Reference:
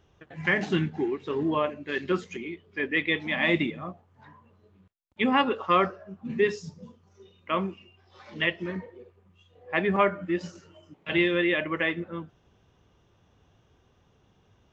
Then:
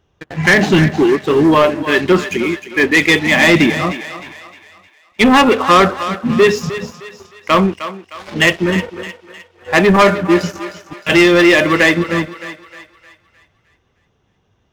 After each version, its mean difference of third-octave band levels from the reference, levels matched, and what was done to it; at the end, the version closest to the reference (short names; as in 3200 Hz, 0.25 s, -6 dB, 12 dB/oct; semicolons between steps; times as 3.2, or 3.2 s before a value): 8.0 dB: sample leveller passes 3; on a send: thinning echo 0.308 s, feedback 45%, high-pass 480 Hz, level -11 dB; on the sum: gain +7 dB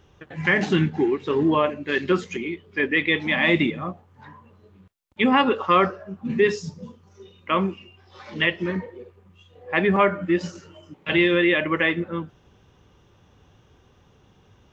1.0 dB: in parallel at +2 dB: limiter -19 dBFS, peak gain reduction 8.5 dB; on the sum: notch 670 Hz, Q 12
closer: second